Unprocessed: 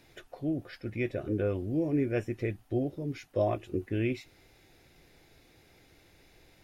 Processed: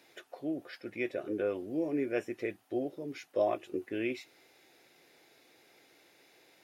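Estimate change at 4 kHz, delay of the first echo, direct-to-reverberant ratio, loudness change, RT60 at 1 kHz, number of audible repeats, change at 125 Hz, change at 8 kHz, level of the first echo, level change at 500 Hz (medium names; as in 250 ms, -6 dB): 0.0 dB, no echo, no reverb, -3.0 dB, no reverb, no echo, -17.0 dB, no reading, no echo, -1.0 dB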